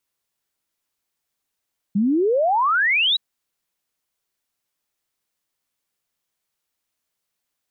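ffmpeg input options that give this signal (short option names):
-f lavfi -i "aevalsrc='0.168*clip(min(t,1.22-t)/0.01,0,1)*sin(2*PI*190*1.22/log(4000/190)*(exp(log(4000/190)*t/1.22)-1))':d=1.22:s=44100"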